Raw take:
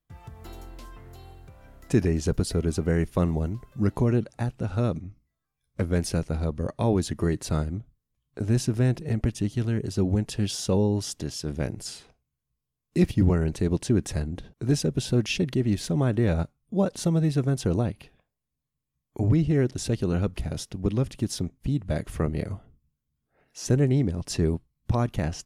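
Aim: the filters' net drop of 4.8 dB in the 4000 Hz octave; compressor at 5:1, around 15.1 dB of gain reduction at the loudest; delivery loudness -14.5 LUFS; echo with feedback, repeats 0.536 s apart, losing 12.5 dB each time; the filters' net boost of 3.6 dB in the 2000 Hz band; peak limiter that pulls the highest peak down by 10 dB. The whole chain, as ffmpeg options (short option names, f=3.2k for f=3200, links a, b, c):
-af "equalizer=f=2k:t=o:g=7,equalizer=f=4k:t=o:g=-8.5,acompressor=threshold=-34dB:ratio=5,alimiter=level_in=8.5dB:limit=-24dB:level=0:latency=1,volume=-8.5dB,aecho=1:1:536|1072|1608:0.237|0.0569|0.0137,volume=27.5dB"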